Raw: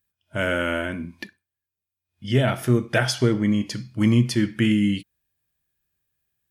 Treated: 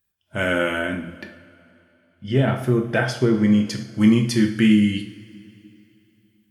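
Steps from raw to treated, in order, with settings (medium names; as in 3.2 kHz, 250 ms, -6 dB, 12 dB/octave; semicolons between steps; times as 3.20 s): 1.16–3.35 s: treble shelf 2.4 kHz -10.5 dB; two-slope reverb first 0.51 s, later 3 s, from -18 dB, DRR 4 dB; trim +1 dB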